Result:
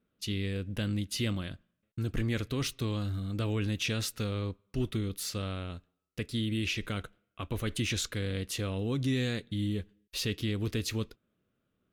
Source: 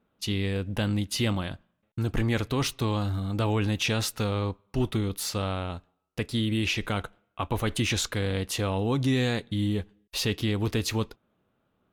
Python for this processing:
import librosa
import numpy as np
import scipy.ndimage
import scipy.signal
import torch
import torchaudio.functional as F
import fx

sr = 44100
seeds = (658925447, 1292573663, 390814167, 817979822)

y = fx.peak_eq(x, sr, hz=850.0, db=-12.0, octaves=0.76)
y = F.gain(torch.from_numpy(y), -4.5).numpy()